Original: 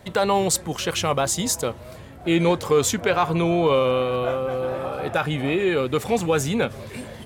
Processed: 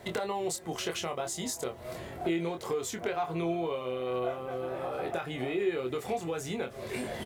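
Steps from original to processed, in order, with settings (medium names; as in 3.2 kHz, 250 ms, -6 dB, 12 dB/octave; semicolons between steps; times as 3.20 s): recorder AGC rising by 5.7 dB/s; bass shelf 170 Hz -6.5 dB; compression 10:1, threshold -31 dBFS, peak gain reduction 16 dB; added noise white -74 dBFS; doubling 24 ms -5.5 dB; small resonant body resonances 380/690/2000 Hz, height 8 dB, ringing for 40 ms; trim -2.5 dB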